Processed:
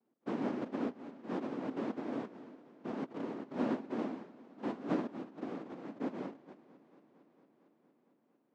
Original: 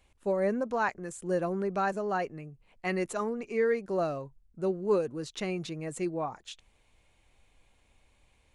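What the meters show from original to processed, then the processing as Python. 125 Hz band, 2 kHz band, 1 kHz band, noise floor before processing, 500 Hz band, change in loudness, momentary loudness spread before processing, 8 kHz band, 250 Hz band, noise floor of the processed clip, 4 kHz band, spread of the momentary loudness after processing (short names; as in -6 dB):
-10.0 dB, -14.0 dB, -11.0 dB, -67 dBFS, -12.0 dB, -8.0 dB, 11 LU, under -20 dB, -2.0 dB, -75 dBFS, -11.5 dB, 12 LU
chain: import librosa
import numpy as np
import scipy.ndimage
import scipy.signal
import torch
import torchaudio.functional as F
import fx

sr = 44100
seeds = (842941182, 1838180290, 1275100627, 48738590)

y = fx.noise_vocoder(x, sr, seeds[0], bands=1)
y = fx.ladder_bandpass(y, sr, hz=290.0, resonance_pct=55)
y = fx.echo_warbled(y, sr, ms=228, feedback_pct=79, rate_hz=2.8, cents=113, wet_db=-21.0)
y = F.gain(torch.from_numpy(y), 13.0).numpy()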